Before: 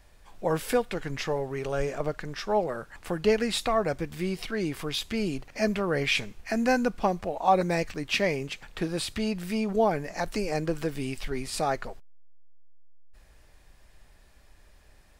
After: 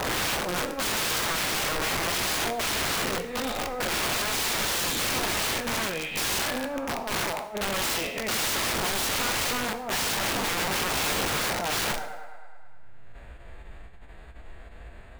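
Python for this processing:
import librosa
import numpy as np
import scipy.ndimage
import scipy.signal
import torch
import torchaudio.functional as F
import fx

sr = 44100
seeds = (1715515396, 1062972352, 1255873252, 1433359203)

y = fx.spec_swells(x, sr, rise_s=1.63)
y = fx.echo_thinned(y, sr, ms=104, feedback_pct=71, hz=240.0, wet_db=-16.0)
y = fx.over_compress(y, sr, threshold_db=-28.0, ratio=-0.5)
y = np.convolve(y, np.full(8, 1.0 / 8))[:len(y)]
y = fx.pitch_keep_formants(y, sr, semitones=2.0)
y = (np.mod(10.0 ** (29.0 / 20.0) * y + 1.0, 2.0) - 1.0) / 10.0 ** (29.0 / 20.0)
y = fx.rev_plate(y, sr, seeds[0], rt60_s=0.81, hf_ratio=0.9, predelay_ms=0, drr_db=9.5)
y = y * 10.0 ** (6.0 / 20.0)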